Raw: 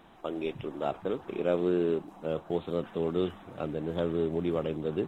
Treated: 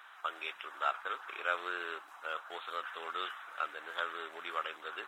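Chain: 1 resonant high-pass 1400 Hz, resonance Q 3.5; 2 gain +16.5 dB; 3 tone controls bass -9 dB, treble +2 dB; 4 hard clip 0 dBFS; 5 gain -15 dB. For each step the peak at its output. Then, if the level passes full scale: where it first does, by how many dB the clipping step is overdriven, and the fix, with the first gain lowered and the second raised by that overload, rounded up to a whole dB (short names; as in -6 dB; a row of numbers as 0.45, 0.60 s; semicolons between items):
-19.5, -3.0, -3.5, -3.5, -18.5 dBFS; no overload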